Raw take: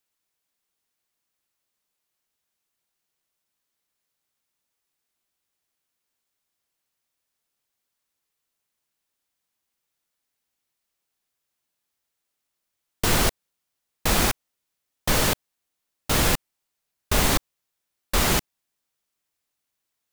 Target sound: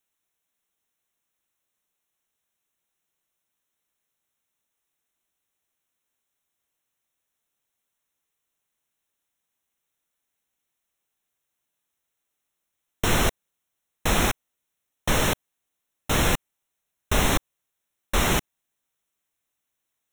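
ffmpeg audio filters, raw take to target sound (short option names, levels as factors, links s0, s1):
-filter_complex "[0:a]acrossover=split=6900[s0][s1];[s1]asoftclip=type=tanh:threshold=0.0299[s2];[s0][s2]amix=inputs=2:normalize=0,asuperstop=centerf=4700:order=4:qfactor=3.4"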